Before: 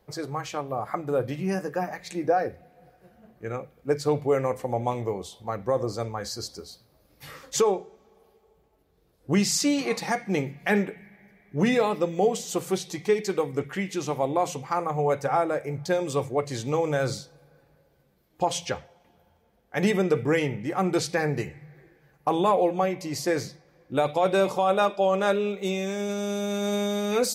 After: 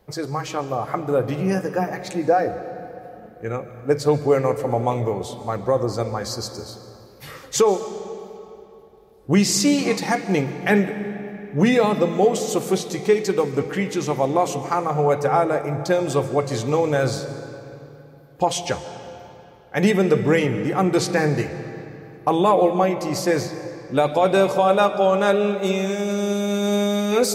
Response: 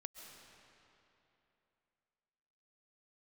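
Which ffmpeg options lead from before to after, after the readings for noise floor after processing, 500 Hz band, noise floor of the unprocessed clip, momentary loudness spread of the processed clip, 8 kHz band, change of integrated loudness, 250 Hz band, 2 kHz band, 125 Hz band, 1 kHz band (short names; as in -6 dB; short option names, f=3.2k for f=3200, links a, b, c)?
-46 dBFS, +5.5 dB, -65 dBFS, 16 LU, +4.5 dB, +5.5 dB, +6.5 dB, +5.0 dB, +6.5 dB, +5.0 dB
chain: -filter_complex "[0:a]asplit=2[a][b];[1:a]atrim=start_sample=2205,lowshelf=f=480:g=4[c];[b][c]afir=irnorm=-1:irlink=0,volume=2.5dB[d];[a][d]amix=inputs=2:normalize=0"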